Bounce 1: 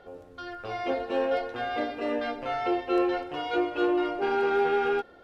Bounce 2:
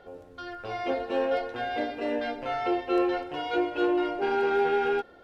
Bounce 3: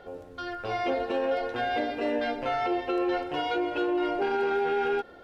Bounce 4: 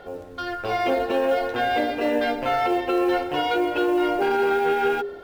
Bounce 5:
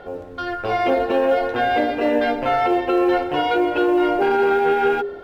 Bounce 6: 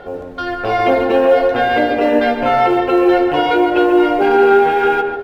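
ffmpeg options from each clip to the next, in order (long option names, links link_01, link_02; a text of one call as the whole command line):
ffmpeg -i in.wav -af "bandreject=frequency=1200:width=17" out.wav
ffmpeg -i in.wav -af "alimiter=limit=-23dB:level=0:latency=1:release=97,volume=3.5dB" out.wav
ffmpeg -i in.wav -af "acrusher=bits=8:mode=log:mix=0:aa=0.000001,bandreject=frequency=57.74:width_type=h:width=4,bandreject=frequency=115.48:width_type=h:width=4,bandreject=frequency=173.22:width_type=h:width=4,bandreject=frequency=230.96:width_type=h:width=4,bandreject=frequency=288.7:width_type=h:width=4,bandreject=frequency=346.44:width_type=h:width=4,bandreject=frequency=404.18:width_type=h:width=4,bandreject=frequency=461.92:width_type=h:width=4,bandreject=frequency=519.66:width_type=h:width=4,bandreject=frequency=577.4:width_type=h:width=4,volume=6dB" out.wav
ffmpeg -i in.wav -af "highshelf=frequency=4500:gain=-10.5,volume=4dB" out.wav
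ffmpeg -i in.wav -filter_complex "[0:a]asplit=2[link_01][link_02];[link_02]adelay=144,lowpass=frequency=2200:poles=1,volume=-6dB,asplit=2[link_03][link_04];[link_04]adelay=144,lowpass=frequency=2200:poles=1,volume=0.35,asplit=2[link_05][link_06];[link_06]adelay=144,lowpass=frequency=2200:poles=1,volume=0.35,asplit=2[link_07][link_08];[link_08]adelay=144,lowpass=frequency=2200:poles=1,volume=0.35[link_09];[link_01][link_03][link_05][link_07][link_09]amix=inputs=5:normalize=0,volume=4.5dB" out.wav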